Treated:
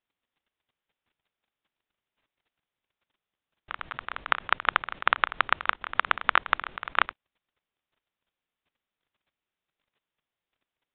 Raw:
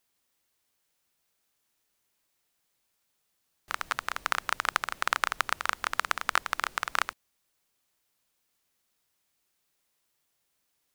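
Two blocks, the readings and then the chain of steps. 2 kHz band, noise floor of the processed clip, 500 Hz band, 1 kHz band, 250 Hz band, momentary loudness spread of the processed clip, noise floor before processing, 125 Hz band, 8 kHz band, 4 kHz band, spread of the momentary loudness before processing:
+3.0 dB, below −85 dBFS, +3.0 dB, +3.0 dB, +3.0 dB, 12 LU, −77 dBFS, +3.5 dB, below −35 dB, +1.0 dB, 5 LU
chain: downsampling to 8,000 Hz
output level in coarse steps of 14 dB
level +7 dB

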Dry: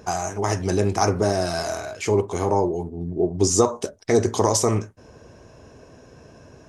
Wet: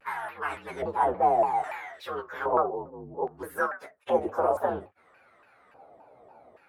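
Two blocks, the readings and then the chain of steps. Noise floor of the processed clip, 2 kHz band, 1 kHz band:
−61 dBFS, −1.5 dB, 0.0 dB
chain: partials spread apart or drawn together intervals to 118%
auto-filter band-pass square 0.61 Hz 760–1,600 Hz
pitch modulation by a square or saw wave saw down 3.5 Hz, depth 250 cents
level +5 dB

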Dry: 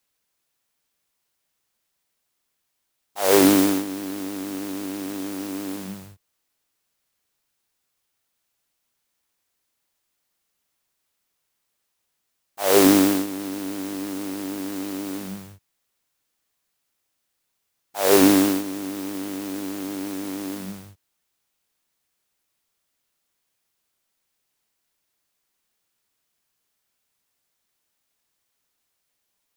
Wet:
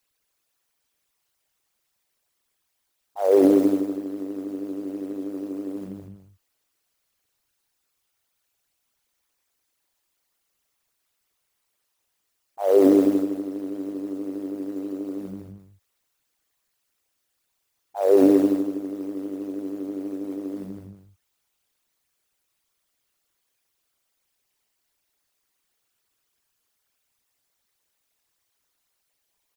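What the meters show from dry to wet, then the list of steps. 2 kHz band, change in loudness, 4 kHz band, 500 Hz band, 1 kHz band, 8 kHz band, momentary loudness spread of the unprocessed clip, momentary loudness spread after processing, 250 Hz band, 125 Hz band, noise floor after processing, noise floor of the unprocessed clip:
below −15 dB, −1.0 dB, below −15 dB, +2.0 dB, −6.5 dB, below −15 dB, 19 LU, 19 LU, −0.5 dB, −6.5 dB, −76 dBFS, −76 dBFS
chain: spectral envelope exaggerated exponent 2
parametric band 180 Hz −4 dB 0.86 octaves
on a send: single-tap delay 204 ms −8 dB

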